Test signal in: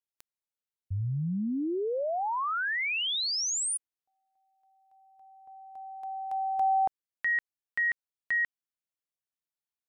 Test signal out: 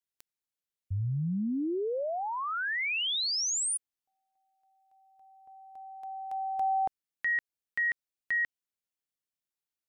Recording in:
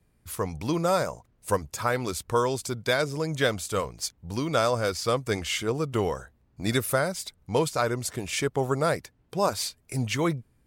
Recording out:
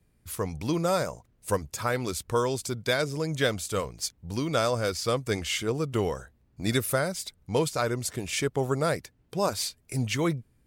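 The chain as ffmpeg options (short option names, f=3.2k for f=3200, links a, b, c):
-af "equalizer=f=960:w=0.92:g=-3.5"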